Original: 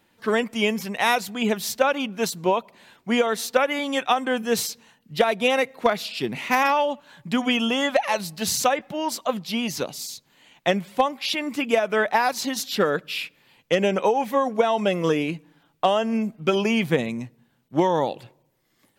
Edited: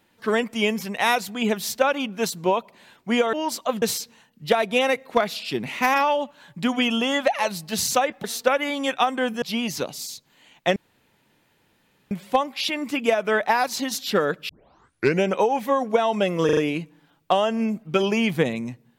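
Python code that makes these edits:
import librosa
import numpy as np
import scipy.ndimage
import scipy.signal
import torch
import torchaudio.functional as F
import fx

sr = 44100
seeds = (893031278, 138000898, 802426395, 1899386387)

y = fx.edit(x, sr, fx.swap(start_s=3.33, length_s=1.18, other_s=8.93, other_length_s=0.49),
    fx.insert_room_tone(at_s=10.76, length_s=1.35),
    fx.tape_start(start_s=13.14, length_s=0.75),
    fx.stutter(start_s=15.1, slice_s=0.04, count=4), tone=tone)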